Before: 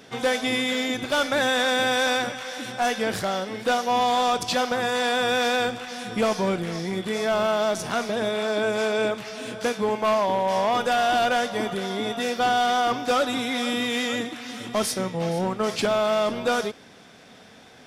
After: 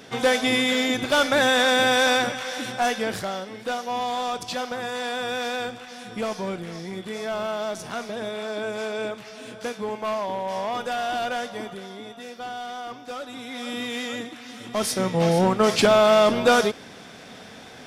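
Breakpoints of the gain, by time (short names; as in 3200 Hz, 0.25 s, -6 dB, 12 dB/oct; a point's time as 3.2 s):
2.6 s +3 dB
3.54 s -5.5 dB
11.49 s -5.5 dB
12.13 s -12.5 dB
13.25 s -12.5 dB
13.79 s -4.5 dB
14.6 s -4.5 dB
15.18 s +6 dB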